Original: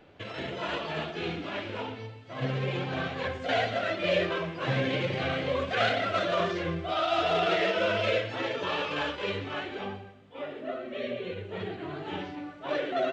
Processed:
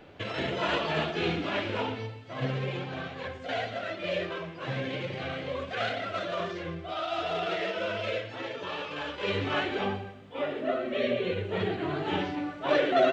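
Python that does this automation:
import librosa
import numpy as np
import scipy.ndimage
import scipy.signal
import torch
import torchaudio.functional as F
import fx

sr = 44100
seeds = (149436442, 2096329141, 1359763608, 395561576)

y = fx.gain(x, sr, db=fx.line((1.97, 4.5), (3.02, -5.0), (9.04, -5.0), (9.44, 6.0)))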